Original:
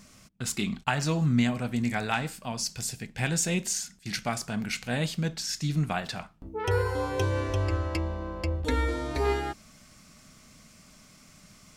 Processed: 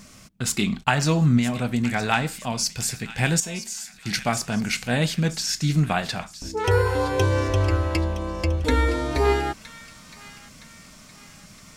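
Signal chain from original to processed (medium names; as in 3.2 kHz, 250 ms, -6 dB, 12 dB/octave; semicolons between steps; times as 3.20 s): 1.37–2.03 s: compression, threshold -25 dBFS, peak gain reduction 6 dB; 3.40–3.94 s: feedback comb 220 Hz, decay 0.27 s, harmonics all, mix 80%; on a send: feedback echo behind a high-pass 966 ms, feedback 44%, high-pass 1.8 kHz, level -13 dB; on the sum: trim +6.5 dB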